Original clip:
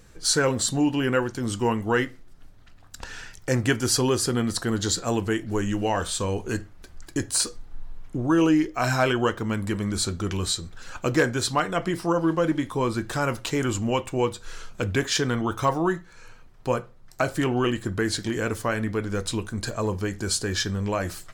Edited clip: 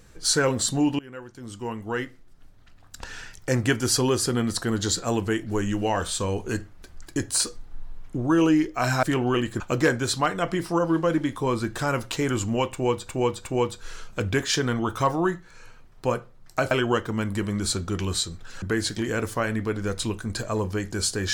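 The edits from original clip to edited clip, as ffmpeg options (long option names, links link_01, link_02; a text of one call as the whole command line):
ffmpeg -i in.wav -filter_complex "[0:a]asplit=8[link_01][link_02][link_03][link_04][link_05][link_06][link_07][link_08];[link_01]atrim=end=0.99,asetpts=PTS-STARTPTS,afade=type=out:start_time=0.986:duration=0.004:curve=hsin:silence=0.0707946[link_09];[link_02]atrim=start=0.99:end=9.032,asetpts=PTS-STARTPTS,afade=type=in:duration=2.08:silence=0.0707946[link_10];[link_03]atrim=start=17.328:end=17.902[link_11];[link_04]atrim=start=10.938:end=14.432[link_12];[link_05]atrim=start=14.068:end=14.432[link_13];[link_06]atrim=start=14.068:end=17.332[link_14];[link_07]atrim=start=9.028:end=10.942[link_15];[link_08]atrim=start=17.898[link_16];[link_09][link_10]concat=n=2:v=0:a=1[link_17];[link_17][link_11]acrossfade=duration=0.004:curve1=hsin:curve2=hsin[link_18];[link_18][link_12]acrossfade=duration=0.004:curve1=hsin:curve2=hsin[link_19];[link_19][link_13]acrossfade=duration=0.004:curve1=hsin:curve2=hsin[link_20];[link_20][link_14]acrossfade=duration=0.004:curve1=hsin:curve2=hsin[link_21];[link_21][link_15]acrossfade=duration=0.004:curve1=hsin:curve2=hsin[link_22];[link_22][link_16]acrossfade=duration=0.004:curve1=hsin:curve2=hsin" out.wav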